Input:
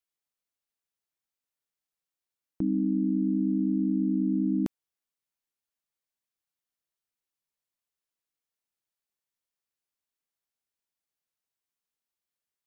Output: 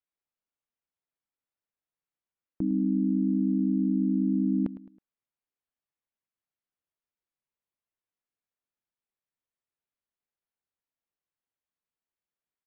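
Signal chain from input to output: distance through air 400 m; on a send: feedback delay 107 ms, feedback 39%, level -15.5 dB

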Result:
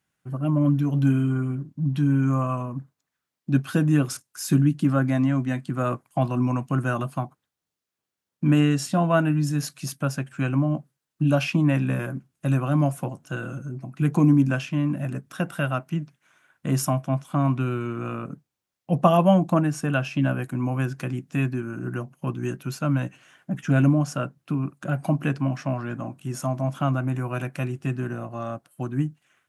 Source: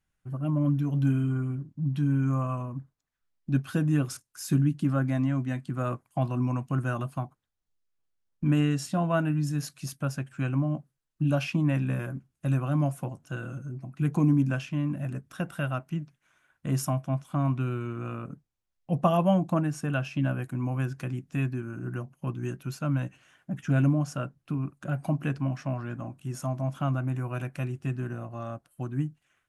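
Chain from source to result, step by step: high-pass 130 Hz; trim +6 dB

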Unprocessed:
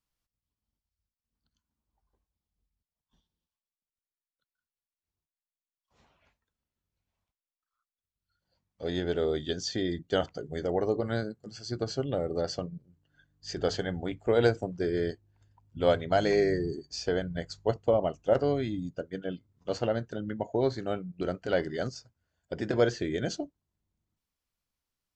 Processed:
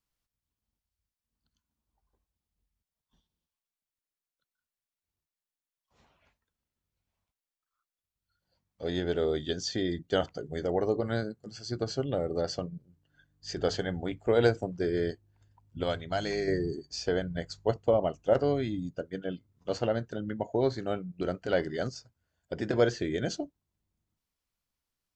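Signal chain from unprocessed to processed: 15.83–16.48 s: ten-band graphic EQ 125 Hz -4 dB, 250 Hz -4 dB, 500 Hz -8 dB, 1 kHz -3 dB, 2 kHz -3 dB

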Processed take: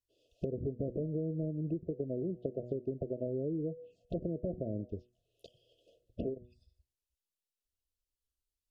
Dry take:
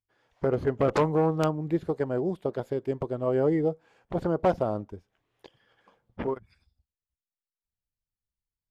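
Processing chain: de-hum 122.1 Hz, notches 21; low-pass that closes with the level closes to 390 Hz, closed at -24 dBFS; compression 16:1, threshold -33 dBFS, peak gain reduction 12 dB; touch-sensitive phaser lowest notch 160 Hz, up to 3.7 kHz, full sweep at -36.5 dBFS; brick-wall FIR band-stop 710–2500 Hz; trim +1.5 dB

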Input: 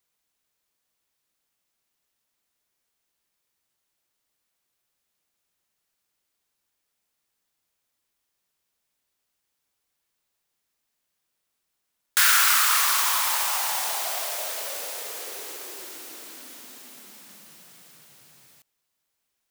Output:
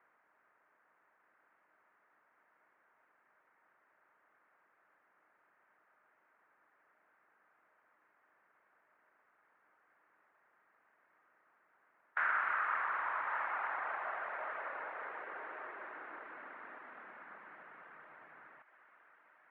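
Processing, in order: spectral levelling over time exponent 0.6; high-pass 200 Hz 6 dB/octave; in parallel at -4.5 dB: short-mantissa float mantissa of 2-bit; on the sum: feedback comb 310 Hz, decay 0.98 s, mix 70%; on a send: thinning echo 1141 ms, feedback 38%, high-pass 940 Hz, level -8 dB; on the sum: reverb removal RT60 0.5 s; steep low-pass 1.9 kHz 36 dB/octave; trim -4 dB

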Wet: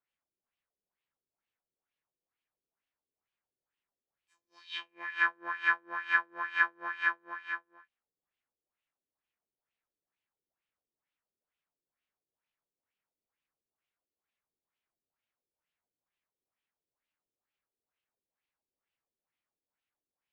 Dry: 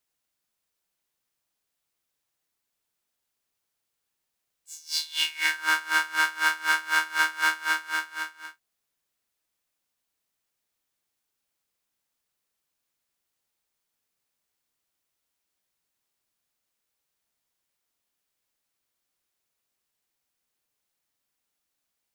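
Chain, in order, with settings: LFO low-pass sine 2 Hz 350–2700 Hz; wide varispeed 1.09×; trim -8 dB

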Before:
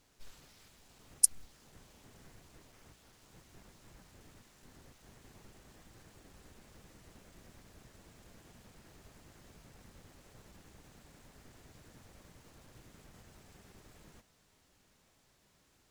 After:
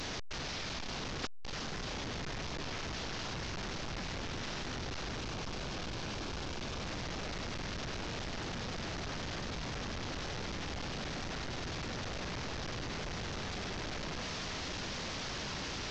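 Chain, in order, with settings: one-bit delta coder 32 kbps, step -30 dBFS; 5.15–6.82 s: peaking EQ 1.9 kHz -6.5 dB 0.2 oct; trim -3 dB

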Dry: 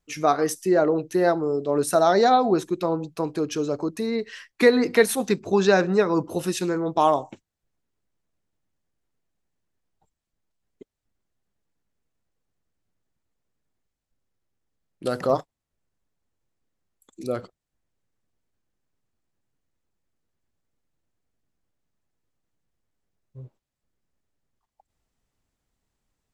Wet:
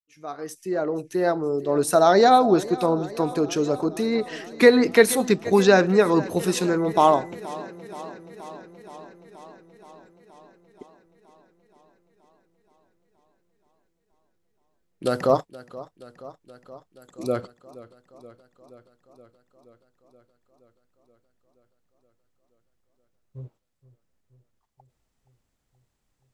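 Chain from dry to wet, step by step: fade-in on the opening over 2.15 s; 6.78–7.30 s: whistle 2 kHz -51 dBFS; modulated delay 475 ms, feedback 72%, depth 61 cents, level -18.5 dB; trim +2.5 dB

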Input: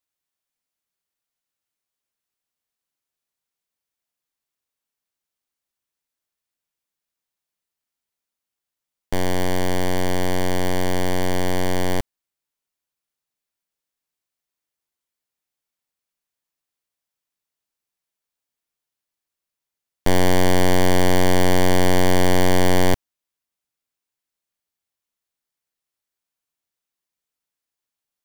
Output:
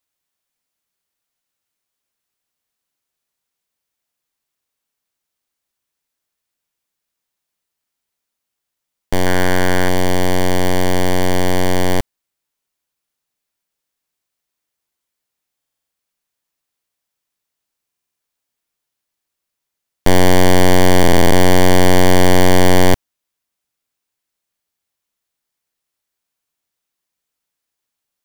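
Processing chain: 9.26–9.89 s: peaking EQ 1.5 kHz +10 dB 0.58 oct; buffer glitch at 15.57/17.87/20.99 s, samples 2048, times 6; trim +6 dB

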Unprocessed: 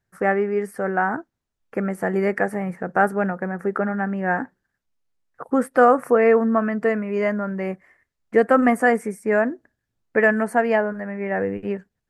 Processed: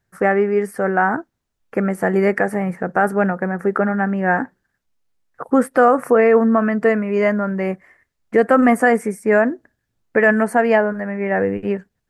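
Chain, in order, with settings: peak limiter -9.5 dBFS, peak gain reduction 5 dB; trim +5 dB

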